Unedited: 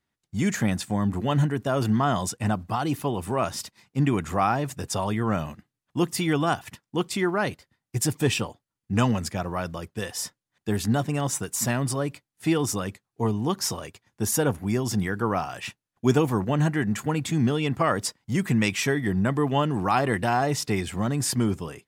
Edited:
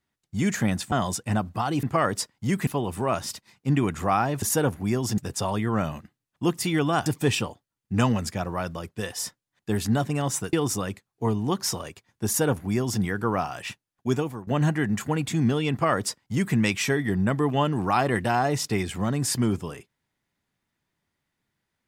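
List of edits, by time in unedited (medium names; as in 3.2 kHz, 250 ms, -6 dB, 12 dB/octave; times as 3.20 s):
0.92–2.06 s: delete
6.60–8.05 s: delete
11.52–12.51 s: delete
14.24–15.00 s: copy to 4.72 s
15.58–16.45 s: fade out equal-power, to -20 dB
17.69–18.53 s: copy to 2.97 s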